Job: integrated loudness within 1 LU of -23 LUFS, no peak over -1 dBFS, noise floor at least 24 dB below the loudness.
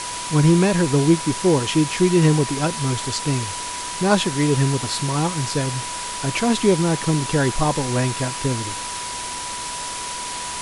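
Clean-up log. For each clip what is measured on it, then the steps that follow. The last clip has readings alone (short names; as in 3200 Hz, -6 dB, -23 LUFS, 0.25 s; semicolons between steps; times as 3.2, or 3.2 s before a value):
steady tone 980 Hz; tone level -31 dBFS; noise floor -29 dBFS; noise floor target -45 dBFS; loudness -20.5 LUFS; peak -4.0 dBFS; loudness target -23.0 LUFS
-> notch 980 Hz, Q 30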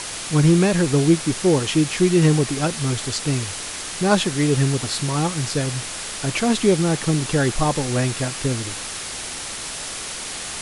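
steady tone none; noise floor -31 dBFS; noise floor target -45 dBFS
-> denoiser 14 dB, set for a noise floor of -31 dBFS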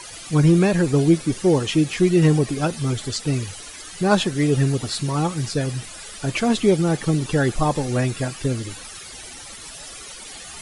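noise floor -38 dBFS; noise floor target -45 dBFS
-> denoiser 7 dB, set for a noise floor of -38 dBFS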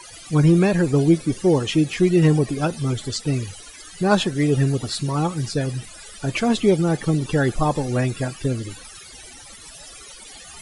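noise floor -42 dBFS; noise floor target -45 dBFS
-> denoiser 6 dB, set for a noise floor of -42 dBFS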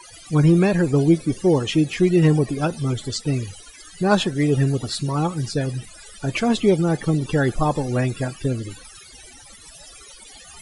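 noise floor -45 dBFS; loudness -20.5 LUFS; peak -4.5 dBFS; loudness target -23.0 LUFS
-> gain -2.5 dB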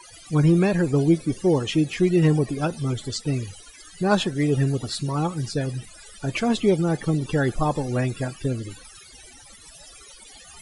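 loudness -23.0 LUFS; peak -7.0 dBFS; noise floor -47 dBFS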